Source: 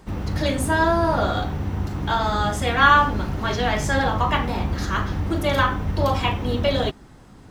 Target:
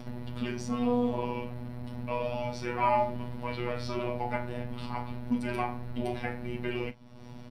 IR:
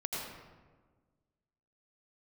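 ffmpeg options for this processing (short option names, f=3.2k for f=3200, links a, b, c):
-filter_complex "[0:a]superequalizer=6b=2:11b=0.708:16b=0.316,acompressor=mode=upward:threshold=-21dB:ratio=2.5,afftfilt=real='hypot(re,im)*cos(PI*b)':imag='0':win_size=1024:overlap=0.75,asetrate=31183,aresample=44100,atempo=1.41421,asplit=2[a][b];[b]aecho=0:1:13|39:0.168|0.168[c];[a][c]amix=inputs=2:normalize=0,volume=-7.5dB"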